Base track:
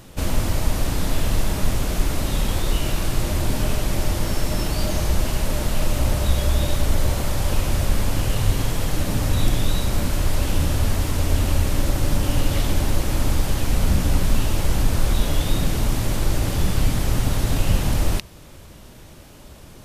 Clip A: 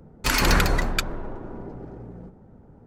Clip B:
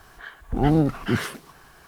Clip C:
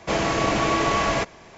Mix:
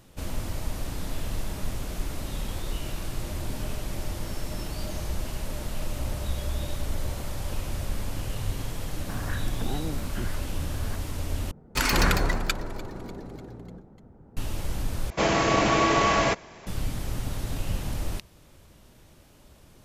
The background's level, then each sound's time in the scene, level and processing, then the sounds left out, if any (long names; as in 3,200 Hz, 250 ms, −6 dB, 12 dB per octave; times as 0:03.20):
base track −10.5 dB
0:09.09: mix in B −13.5 dB + multiband upward and downward compressor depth 100%
0:11.51: overwrite with A −2.5 dB + echo with shifted repeats 297 ms, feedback 58%, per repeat −73 Hz, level −20 dB
0:15.10: overwrite with C